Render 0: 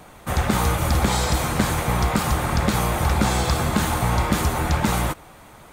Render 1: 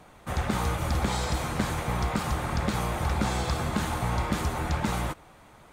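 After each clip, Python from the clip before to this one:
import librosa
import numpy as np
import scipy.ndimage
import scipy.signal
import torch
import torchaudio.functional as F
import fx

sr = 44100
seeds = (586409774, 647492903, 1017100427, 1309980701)

y = fx.high_shelf(x, sr, hz=11000.0, db=-10.5)
y = y * librosa.db_to_amplitude(-7.0)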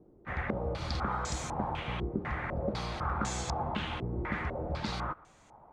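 y = fx.filter_held_lowpass(x, sr, hz=4.0, low_hz=370.0, high_hz=6900.0)
y = y * librosa.db_to_amplitude(-8.0)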